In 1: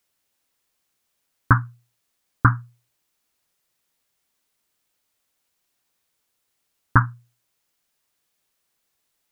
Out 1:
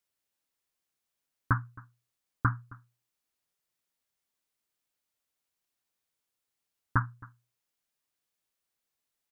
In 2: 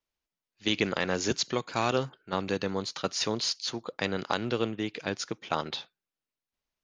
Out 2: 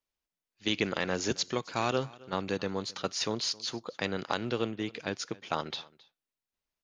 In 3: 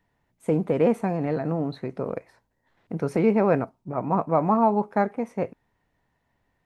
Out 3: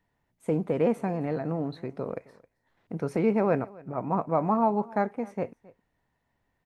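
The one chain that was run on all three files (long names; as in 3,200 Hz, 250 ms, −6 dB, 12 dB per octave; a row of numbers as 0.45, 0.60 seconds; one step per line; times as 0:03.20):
single-tap delay 267 ms −22.5 dB
normalise the peak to −12 dBFS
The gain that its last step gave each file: −11.0, −2.0, −4.0 decibels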